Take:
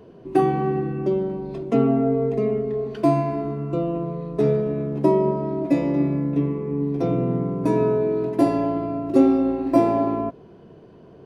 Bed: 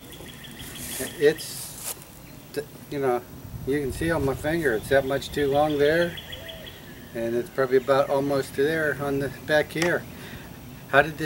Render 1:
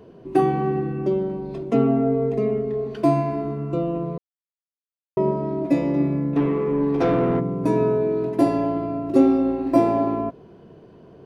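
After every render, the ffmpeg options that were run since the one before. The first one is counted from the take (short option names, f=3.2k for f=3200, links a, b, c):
-filter_complex "[0:a]asplit=3[a][b][c];[a]afade=t=out:st=6.35:d=0.02[d];[b]asplit=2[e][f];[f]highpass=f=720:p=1,volume=19dB,asoftclip=type=tanh:threshold=-11.5dB[g];[e][g]amix=inputs=2:normalize=0,lowpass=f=3.7k:p=1,volume=-6dB,afade=t=in:st=6.35:d=0.02,afade=t=out:st=7.39:d=0.02[h];[c]afade=t=in:st=7.39:d=0.02[i];[d][h][i]amix=inputs=3:normalize=0,asplit=3[j][k][l];[j]atrim=end=4.18,asetpts=PTS-STARTPTS,afade=t=out:st=4.176:d=0.004:c=hsin[m];[k]atrim=start=4.18:end=5.17,asetpts=PTS-STARTPTS,volume=0[n];[l]atrim=start=5.17,asetpts=PTS-STARTPTS,afade=t=in:d=0.004:c=hsin[o];[m][n][o]concat=n=3:v=0:a=1"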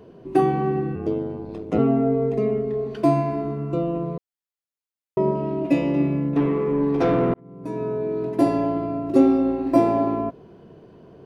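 -filter_complex "[0:a]asettb=1/sr,asplit=3[a][b][c];[a]atrim=end=0.954[d];[b]atrim=start=0.95:end=1.79,asetpts=PTS-STARTPTS,afade=t=in:d=0.004:c=qsin,afade=t=out:st=0.836:d=0.004:c=qsin,aeval=exprs='val(0)*sin(2*PI*53*n/s)':c=same[e];[c]atrim=start=1.786[f];[d][e]acrossfade=d=0.004:c1=hsin:c2=qsin[g];[g][f]acrossfade=d=0.004:c1=qsin:c2=hsin,asettb=1/sr,asplit=3[h][i][j];[h]atrim=end=5.354[k];[i]atrim=start=5.35:end=6.29,asetpts=PTS-STARTPTS,afade=t=in:d=0.004:c=qsin,afade=t=out:st=0.936:d=0.004:c=qsin,equalizer=f=2.8k:t=o:w=0.28:g=13.5[l];[j]atrim=start=6.286[m];[k][l]acrossfade=d=0.004:c1=hsin:c2=qsin[n];[n][m]acrossfade=d=0.004:c1=qsin:c2=hsin,asplit=2[o][p];[o]atrim=end=7.34,asetpts=PTS-STARTPTS,afade=t=out:st=7.336:d=0.004:c=hsin[q];[p]atrim=start=7.34,asetpts=PTS-STARTPTS,afade=t=in:d=1.14[r];[q][r]concat=n=2:v=0:a=1"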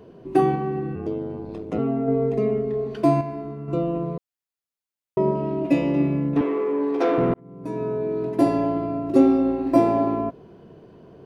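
-filter_complex "[0:a]asettb=1/sr,asplit=3[a][b][c];[a]atrim=end=0.554[d];[b]atrim=start=0.55:end=2.08,asetpts=PTS-STARTPTS,afade=t=in:d=0.004:c=qsin,afade=t=out:st=1.526:d=0.004:c=qsin,acompressor=threshold=-28dB:ratio=1.5:attack=3.2:release=140:knee=1:detection=peak[e];[c]atrim=start=2.076[f];[d][e]acrossfade=d=0.004:c1=hsin:c2=qsin[g];[g][f]acrossfade=d=0.004:c1=qsin:c2=hsin,asettb=1/sr,asplit=3[h][i][j];[h]atrim=end=6.414[k];[i]atrim=start=6.41:end=7.18,asetpts=PTS-STARTPTS,afade=t=in:d=0.004:c=qsin,afade=t=out:st=0.766:d=0.004:c=qsin,highpass=f=290:w=0.5412,highpass=f=290:w=1.3066[l];[j]atrim=start=7.176[m];[k][l]acrossfade=d=0.004:c1=hsin:c2=qsin[n];[n][m]acrossfade=d=0.004:c1=qsin:c2=hsin,asplit=3[o][p][q];[o]atrim=end=3.212[r];[p]atrim=start=3.208:end=3.682,asetpts=PTS-STARTPTS,volume=-6dB[s];[q]atrim=start=3.678[t];[r][s]acrossfade=d=0.004:c1=hsin:c2=hsin[u];[u][t]acrossfade=d=0.004:c1=hsin:c2=hsin"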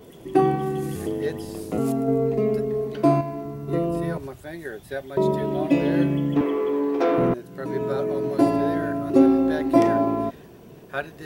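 -filter_complex "[1:a]volume=-11dB[a];[0:a][a]amix=inputs=2:normalize=0"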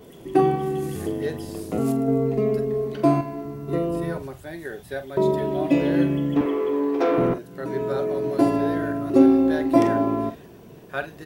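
-filter_complex "[0:a]asplit=2[a][b];[b]adelay=45,volume=-12dB[c];[a][c]amix=inputs=2:normalize=0"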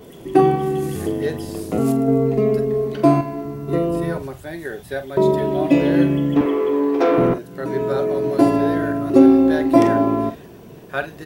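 -af "volume=4.5dB,alimiter=limit=-1dB:level=0:latency=1"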